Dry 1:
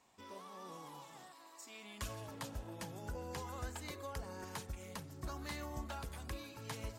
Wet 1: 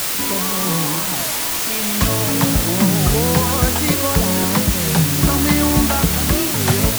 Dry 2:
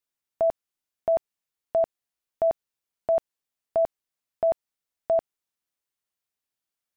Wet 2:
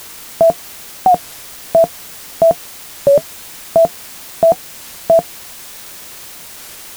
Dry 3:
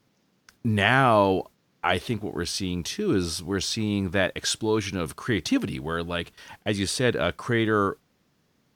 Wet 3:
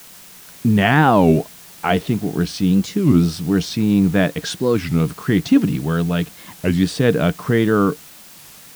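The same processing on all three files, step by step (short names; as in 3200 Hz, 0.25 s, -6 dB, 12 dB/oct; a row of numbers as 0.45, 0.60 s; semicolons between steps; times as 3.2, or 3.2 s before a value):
LPF 4000 Hz 6 dB/oct; bell 170 Hz +14.5 dB 0.67 oct; small resonant body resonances 290/460/700 Hz, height 7 dB, ringing for 85 ms; in parallel at -5 dB: requantised 6-bit, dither triangular; on the sum: record warp 33 1/3 rpm, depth 250 cents; normalise peaks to -2 dBFS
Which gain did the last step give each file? +19.5, +7.5, -1.0 dB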